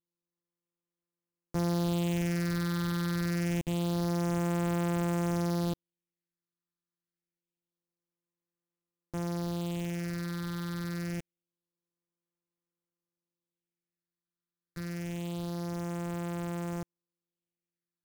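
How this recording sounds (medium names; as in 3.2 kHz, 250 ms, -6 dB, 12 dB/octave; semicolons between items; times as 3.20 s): a buzz of ramps at a fixed pitch in blocks of 256 samples; phasing stages 6, 0.26 Hz, lowest notch 670–4900 Hz; aliases and images of a low sample rate 16 kHz, jitter 0%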